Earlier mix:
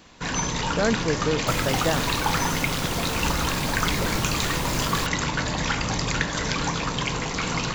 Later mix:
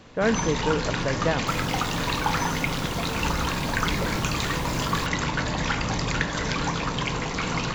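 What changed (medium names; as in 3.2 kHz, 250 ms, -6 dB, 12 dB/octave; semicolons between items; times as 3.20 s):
speech: entry -0.60 s; first sound: add treble shelf 5.8 kHz -8 dB; second sound -7.5 dB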